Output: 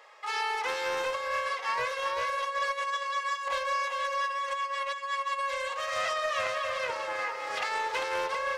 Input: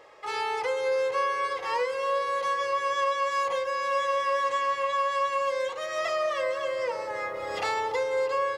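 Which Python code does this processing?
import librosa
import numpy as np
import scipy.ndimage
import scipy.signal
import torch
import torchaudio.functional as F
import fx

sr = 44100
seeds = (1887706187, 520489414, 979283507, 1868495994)

y = scipy.signal.sosfilt(scipy.signal.butter(2, 860.0, 'highpass', fs=sr, output='sos'), x)
y = fx.over_compress(y, sr, threshold_db=-31.0, ratio=-0.5)
y = y + 10.0 ** (-5.0 / 20.0) * np.pad(y, (int(397 * sr / 1000.0), 0))[:len(y)]
y = fx.doppler_dist(y, sr, depth_ms=0.23)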